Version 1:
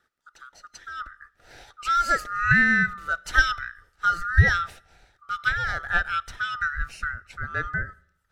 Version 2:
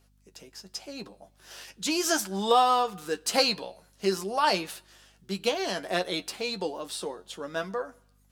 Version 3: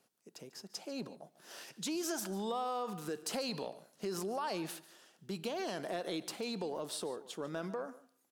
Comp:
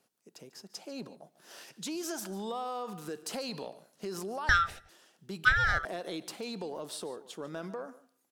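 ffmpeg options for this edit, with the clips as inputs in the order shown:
-filter_complex "[0:a]asplit=2[a][b];[2:a]asplit=3[c][d][e];[c]atrim=end=4.492[f];[a]atrim=start=4.488:end=4.892[g];[d]atrim=start=4.888:end=5.452[h];[b]atrim=start=5.448:end=5.852[i];[e]atrim=start=5.848[j];[f][g]acrossfade=d=0.004:c1=hsin:c2=hsin[k];[k][h]acrossfade=d=0.004:c1=hsin:c2=hsin[l];[l][i]acrossfade=d=0.004:c1=hsin:c2=hsin[m];[m][j]acrossfade=d=0.004:c1=hsin:c2=hsin"

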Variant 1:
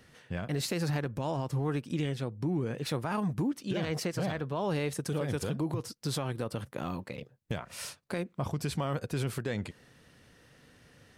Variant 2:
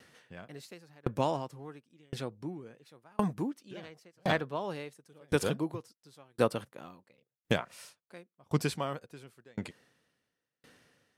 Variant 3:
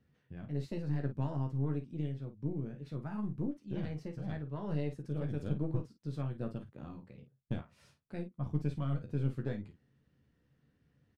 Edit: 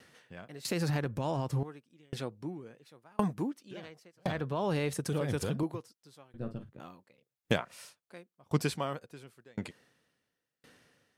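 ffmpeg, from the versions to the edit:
-filter_complex "[0:a]asplit=2[a][b];[1:a]asplit=4[c][d][e][f];[c]atrim=end=0.652[g];[a]atrim=start=0.648:end=1.632[h];[d]atrim=start=1.628:end=4.272[i];[b]atrim=start=4.268:end=5.632[j];[e]atrim=start=5.628:end=6.342[k];[2:a]atrim=start=6.338:end=6.802[l];[f]atrim=start=6.798[m];[g][h]acrossfade=d=0.004:c1=hsin:c2=hsin[n];[n][i]acrossfade=d=0.004:c1=hsin:c2=hsin[o];[o][j]acrossfade=d=0.004:c1=hsin:c2=hsin[p];[p][k]acrossfade=d=0.004:c1=hsin:c2=hsin[q];[q][l]acrossfade=d=0.004:c1=hsin:c2=hsin[r];[r][m]acrossfade=d=0.004:c1=hsin:c2=hsin"

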